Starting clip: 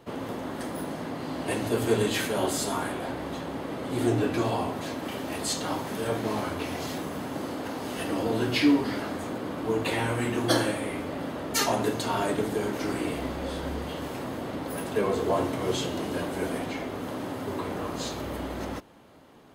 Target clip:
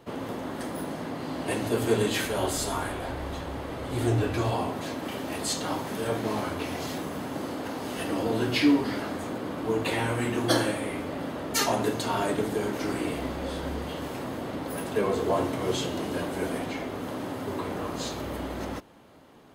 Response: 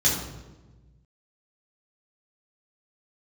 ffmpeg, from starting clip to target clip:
-filter_complex "[0:a]asplit=3[link_01][link_02][link_03];[link_01]afade=type=out:start_time=2.24:duration=0.02[link_04];[link_02]asubboost=boost=9:cutoff=70,afade=type=in:start_time=2.24:duration=0.02,afade=type=out:start_time=4.53:duration=0.02[link_05];[link_03]afade=type=in:start_time=4.53:duration=0.02[link_06];[link_04][link_05][link_06]amix=inputs=3:normalize=0"

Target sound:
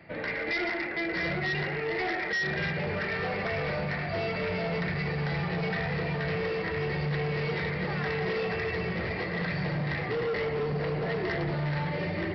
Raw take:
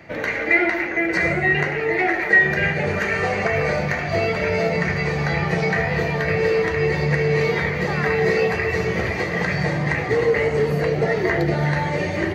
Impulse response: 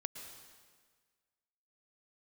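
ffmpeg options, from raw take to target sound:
-filter_complex "[0:a]equalizer=frequency=170:width_type=o:width=0.35:gain=4[link_01];[1:a]atrim=start_sample=2205,afade=type=out:start_time=0.18:duration=0.01,atrim=end_sample=8379[link_02];[link_01][link_02]afir=irnorm=-1:irlink=0,aresample=11025,asoftclip=type=hard:threshold=-21.5dB,aresample=44100,volume=-5.5dB"

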